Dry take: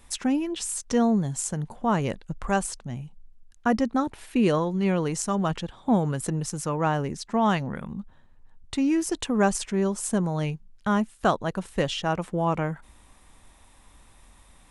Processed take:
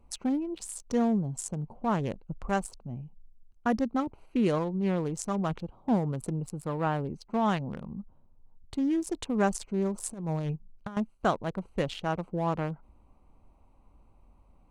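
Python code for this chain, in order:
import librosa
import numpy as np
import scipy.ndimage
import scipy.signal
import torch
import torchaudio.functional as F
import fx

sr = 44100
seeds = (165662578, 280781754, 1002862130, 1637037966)

y = fx.wiener(x, sr, points=25)
y = fx.peak_eq(y, sr, hz=6100.0, db=-11.5, octaves=0.41, at=(6.39, 7.07))
y = fx.over_compress(y, sr, threshold_db=-28.0, ratio=-0.5, at=(9.94, 10.97))
y = y * librosa.db_to_amplitude(-4.0)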